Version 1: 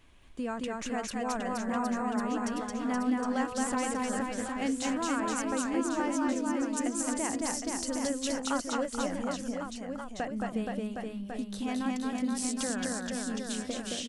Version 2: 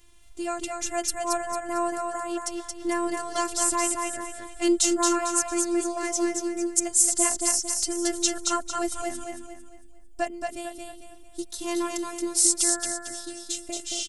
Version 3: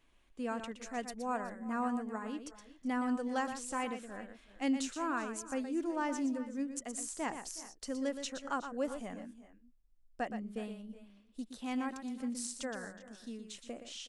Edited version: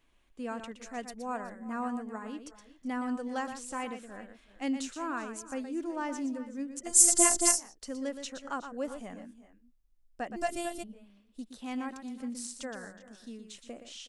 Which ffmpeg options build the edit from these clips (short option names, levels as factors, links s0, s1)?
-filter_complex "[1:a]asplit=2[s0][s1];[2:a]asplit=3[s2][s3][s4];[s2]atrim=end=6.93,asetpts=PTS-STARTPTS[s5];[s0]atrim=start=6.83:end=7.61,asetpts=PTS-STARTPTS[s6];[s3]atrim=start=7.51:end=10.37,asetpts=PTS-STARTPTS[s7];[s1]atrim=start=10.35:end=10.84,asetpts=PTS-STARTPTS[s8];[s4]atrim=start=10.82,asetpts=PTS-STARTPTS[s9];[s5][s6]acrossfade=d=0.1:c1=tri:c2=tri[s10];[s10][s7]acrossfade=d=0.1:c1=tri:c2=tri[s11];[s11][s8]acrossfade=d=0.02:c1=tri:c2=tri[s12];[s12][s9]acrossfade=d=0.02:c1=tri:c2=tri"